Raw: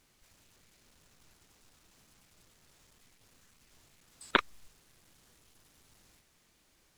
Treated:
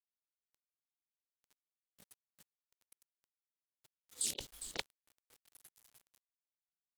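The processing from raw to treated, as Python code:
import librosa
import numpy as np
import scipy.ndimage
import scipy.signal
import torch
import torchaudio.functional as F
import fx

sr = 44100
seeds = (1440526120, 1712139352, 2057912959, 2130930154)

y = fx.brickwall_bandstop(x, sr, low_hz=600.0, high_hz=2900.0)
y = fx.peak_eq(y, sr, hz=5200.0, db=-9.5, octaves=0.28)
y = fx.noise_reduce_blind(y, sr, reduce_db=27)
y = fx.highpass(y, sr, hz=100.0, slope=6)
y = fx.low_shelf(y, sr, hz=390.0, db=-4.5)
y = y + 10.0 ** (-12.5 / 20.0) * np.pad(y, (int(406 * sr / 1000.0), 0))[:len(y)]
y = fx.quant_dither(y, sr, seeds[0], bits=12, dither='none')
y = fx.over_compress(y, sr, threshold_db=-52.0, ratio=-1.0)
y = fx.doppler_dist(y, sr, depth_ms=0.74)
y = y * 10.0 ** (10.0 / 20.0)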